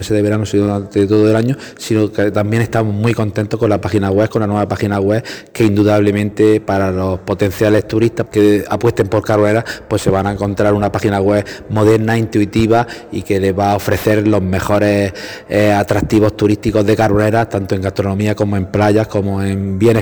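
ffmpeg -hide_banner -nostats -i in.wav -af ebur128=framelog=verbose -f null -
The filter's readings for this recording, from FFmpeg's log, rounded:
Integrated loudness:
  I:         -14.3 LUFS
  Threshold: -24.4 LUFS
Loudness range:
  LRA:         1.3 LU
  Threshold: -34.3 LUFS
  LRA low:   -15.0 LUFS
  LRA high:  -13.7 LUFS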